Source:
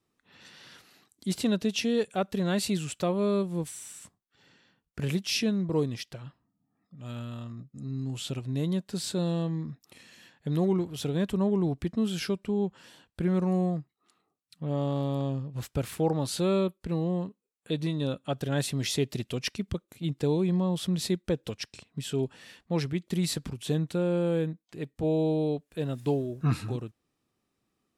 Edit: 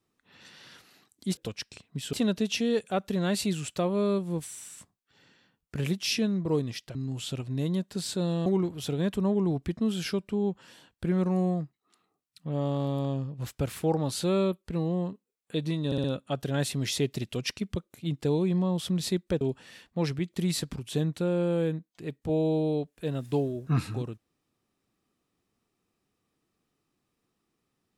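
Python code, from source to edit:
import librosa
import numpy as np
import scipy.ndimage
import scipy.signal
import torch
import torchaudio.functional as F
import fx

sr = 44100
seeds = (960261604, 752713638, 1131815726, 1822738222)

y = fx.edit(x, sr, fx.cut(start_s=6.19, length_s=1.74),
    fx.cut(start_s=9.44, length_s=1.18),
    fx.stutter(start_s=18.02, slice_s=0.06, count=4),
    fx.move(start_s=21.39, length_s=0.76, to_s=1.37), tone=tone)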